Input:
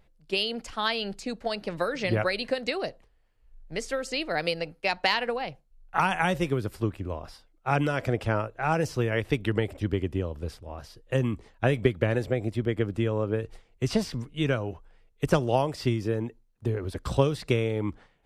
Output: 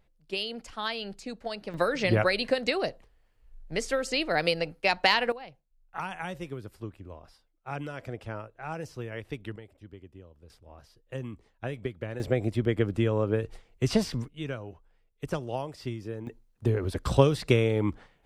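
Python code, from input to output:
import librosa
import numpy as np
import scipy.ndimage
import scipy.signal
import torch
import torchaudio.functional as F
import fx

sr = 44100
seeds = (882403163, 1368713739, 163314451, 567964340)

y = fx.gain(x, sr, db=fx.steps((0.0, -5.0), (1.74, 2.0), (5.32, -11.0), (9.56, -20.0), (10.5, -11.0), (12.2, 1.0), (14.28, -9.0), (16.27, 2.5)))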